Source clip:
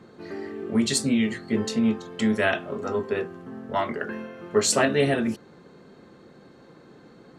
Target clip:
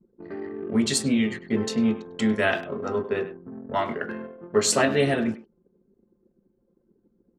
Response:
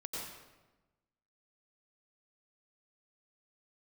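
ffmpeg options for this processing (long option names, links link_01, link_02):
-filter_complex "[0:a]anlmdn=1.58,asplit=2[link_01][link_02];[link_02]adelay=100,highpass=300,lowpass=3400,asoftclip=type=hard:threshold=-18dB,volume=-13dB[link_03];[link_01][link_03]amix=inputs=2:normalize=0"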